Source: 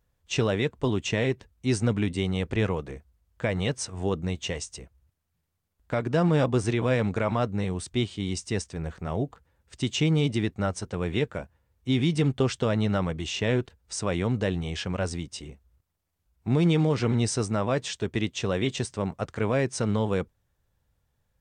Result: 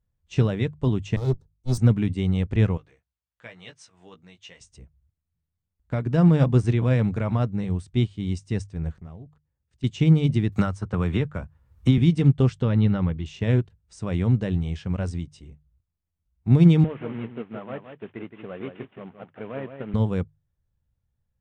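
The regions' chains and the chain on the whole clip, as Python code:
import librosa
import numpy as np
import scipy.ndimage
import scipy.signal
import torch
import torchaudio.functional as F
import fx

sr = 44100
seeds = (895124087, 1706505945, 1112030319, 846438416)

y = fx.chain(x, sr, fx.lower_of_two(delay_ms=2.3),
    fx.band_shelf(hz=2200.0, db=-15.0, octaves=1.1),
    fx.band_widen(depth_pct=70), at=(1.16, 1.78))
y = fx.chain(y, sr, fx.bandpass_q(hz=3000.0, q=0.52),
    fx.doubler(ms=17.0, db=-6.0), at=(2.77, 4.61))
y = fx.chain(y, sr, fx.notch(hz=1400.0, q=29.0),
    fx.level_steps(step_db=19),
    fx.doppler_dist(depth_ms=0.21), at=(9.0, 9.84))
y = fx.chain(y, sr, fx.peak_eq(hz=1200.0, db=8.0, octaves=0.83),
    fx.quant_float(bits=8),
    fx.band_squash(depth_pct=100), at=(10.52, 11.98))
y = fx.chain(y, sr, fx.lowpass(hz=4700.0, slope=24),
    fx.notch(hz=660.0, q=7.3), at=(12.62, 13.26))
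y = fx.chain(y, sr, fx.cvsd(bps=16000),
    fx.highpass(hz=300.0, slope=12),
    fx.echo_single(ms=168, db=-6.0), at=(16.84, 19.94))
y = fx.bass_treble(y, sr, bass_db=12, treble_db=-3)
y = fx.hum_notches(y, sr, base_hz=50, count=3)
y = fx.upward_expand(y, sr, threshold_db=-35.0, expansion=1.5)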